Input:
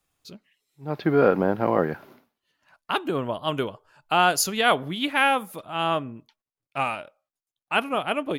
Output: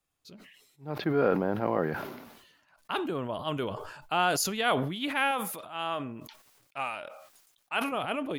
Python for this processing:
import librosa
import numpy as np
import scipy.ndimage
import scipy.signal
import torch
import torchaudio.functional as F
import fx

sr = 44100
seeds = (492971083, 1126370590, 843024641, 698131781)

y = fx.low_shelf(x, sr, hz=340.0, db=-10.0, at=(5.31, 7.92))
y = fx.sustainer(y, sr, db_per_s=51.0)
y = y * librosa.db_to_amplitude(-7.0)